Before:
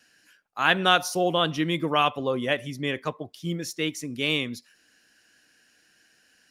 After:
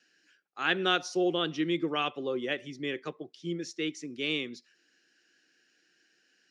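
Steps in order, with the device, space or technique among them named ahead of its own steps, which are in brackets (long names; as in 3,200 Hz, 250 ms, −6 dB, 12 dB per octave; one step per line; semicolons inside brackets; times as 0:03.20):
television speaker (loudspeaker in its box 160–6,700 Hz, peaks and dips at 220 Hz −5 dB, 360 Hz +8 dB, 640 Hz −6 dB, 980 Hz −9 dB)
level −6 dB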